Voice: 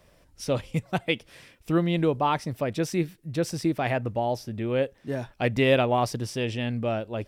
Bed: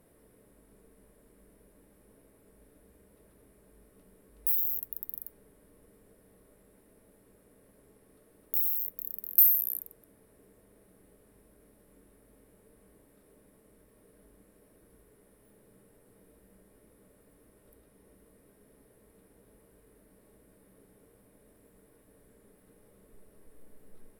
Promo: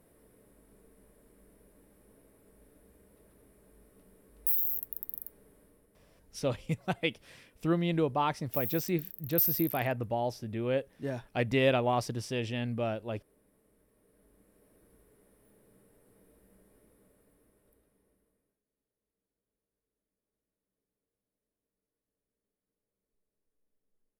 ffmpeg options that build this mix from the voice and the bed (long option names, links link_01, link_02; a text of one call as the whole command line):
ffmpeg -i stem1.wav -i stem2.wav -filter_complex "[0:a]adelay=5950,volume=-5dB[link_01];[1:a]volume=4.5dB,afade=type=out:start_time=5.6:duration=0.28:silence=0.446684,afade=type=in:start_time=14.01:duration=0.75:silence=0.562341,afade=type=out:start_time=16.73:duration=1.89:silence=0.0446684[link_02];[link_01][link_02]amix=inputs=2:normalize=0" out.wav